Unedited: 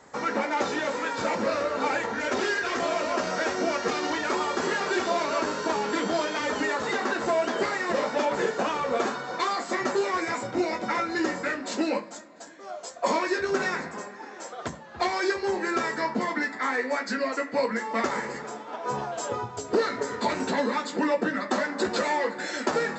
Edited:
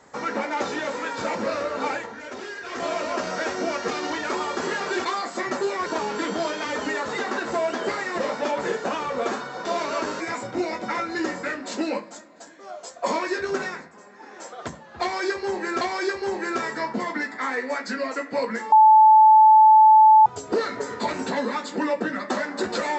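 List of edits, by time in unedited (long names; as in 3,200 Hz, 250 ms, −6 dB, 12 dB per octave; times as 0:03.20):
0:01.90–0:02.86: duck −9 dB, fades 0.33 s quadratic
0:05.05–0:05.60: swap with 0:09.39–0:10.20
0:13.53–0:14.37: duck −11.5 dB, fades 0.36 s
0:15.02–0:15.81: repeat, 2 plays
0:17.93–0:19.47: beep over 870 Hz −9 dBFS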